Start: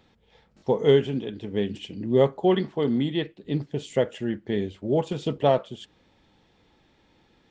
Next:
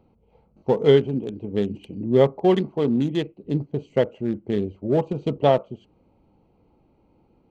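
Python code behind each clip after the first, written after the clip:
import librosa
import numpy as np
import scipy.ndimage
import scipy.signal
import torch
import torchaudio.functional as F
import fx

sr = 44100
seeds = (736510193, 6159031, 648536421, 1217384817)

y = fx.wiener(x, sr, points=25)
y = F.gain(torch.from_numpy(y), 3.0).numpy()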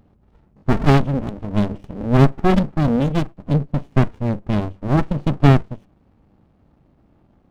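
y = fx.running_max(x, sr, window=65)
y = F.gain(torch.from_numpy(y), 6.5).numpy()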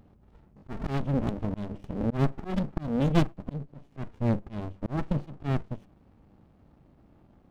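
y = fx.auto_swell(x, sr, attack_ms=407.0)
y = F.gain(torch.from_numpy(y), -2.0).numpy()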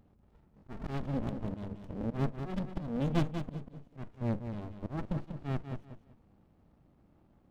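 y = fx.echo_feedback(x, sr, ms=191, feedback_pct=25, wet_db=-8.0)
y = F.gain(torch.from_numpy(y), -7.0).numpy()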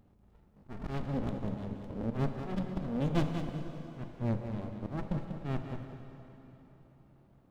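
y = fx.rev_plate(x, sr, seeds[0], rt60_s=3.7, hf_ratio=0.9, predelay_ms=0, drr_db=6.0)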